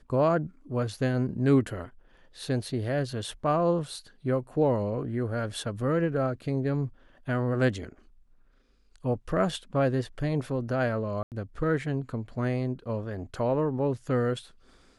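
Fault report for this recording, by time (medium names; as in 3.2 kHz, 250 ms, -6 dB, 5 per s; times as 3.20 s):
11.23–11.32 s: dropout 88 ms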